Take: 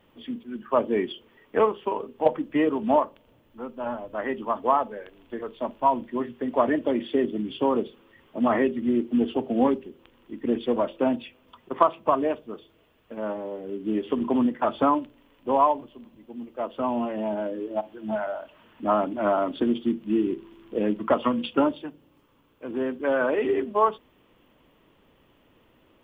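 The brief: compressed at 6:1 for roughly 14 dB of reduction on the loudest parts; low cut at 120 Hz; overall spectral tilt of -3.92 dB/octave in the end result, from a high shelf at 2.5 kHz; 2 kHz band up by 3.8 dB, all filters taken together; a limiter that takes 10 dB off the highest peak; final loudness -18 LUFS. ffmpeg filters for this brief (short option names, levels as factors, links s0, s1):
-af "highpass=120,equalizer=f=2000:t=o:g=7,highshelf=f=2500:g=-5,acompressor=threshold=0.0355:ratio=6,volume=8.91,alimiter=limit=0.422:level=0:latency=1"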